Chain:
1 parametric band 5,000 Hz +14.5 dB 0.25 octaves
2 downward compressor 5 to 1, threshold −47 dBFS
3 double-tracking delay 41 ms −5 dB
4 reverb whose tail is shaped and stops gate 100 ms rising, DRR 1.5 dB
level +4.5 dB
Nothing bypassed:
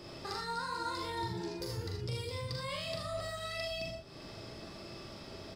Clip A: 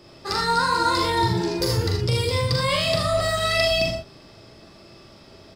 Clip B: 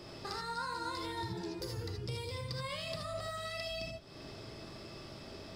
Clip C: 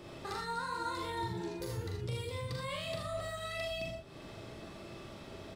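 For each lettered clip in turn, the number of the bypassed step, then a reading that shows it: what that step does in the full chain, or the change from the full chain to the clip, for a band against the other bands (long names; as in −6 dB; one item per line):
2, average gain reduction 11.0 dB
3, change in integrated loudness −1.5 LU
1, 4 kHz band −3.0 dB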